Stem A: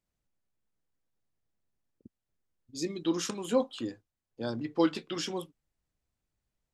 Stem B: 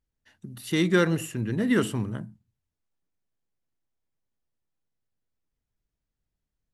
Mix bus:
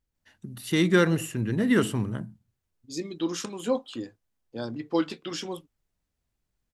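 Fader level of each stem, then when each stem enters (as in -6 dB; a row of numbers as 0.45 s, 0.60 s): +0.5 dB, +1.0 dB; 0.15 s, 0.00 s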